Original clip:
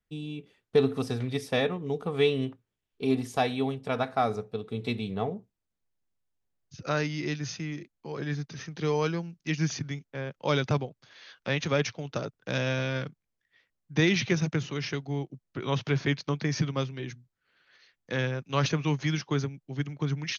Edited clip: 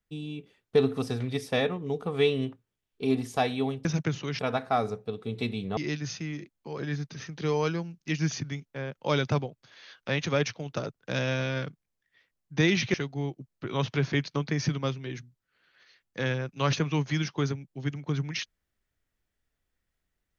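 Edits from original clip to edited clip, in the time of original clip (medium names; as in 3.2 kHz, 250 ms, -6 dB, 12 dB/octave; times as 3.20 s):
5.23–7.16 s: delete
14.33–14.87 s: move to 3.85 s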